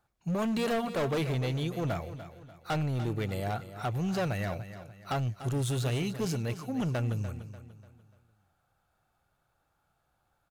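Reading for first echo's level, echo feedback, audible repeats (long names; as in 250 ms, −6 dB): −12.5 dB, 39%, 3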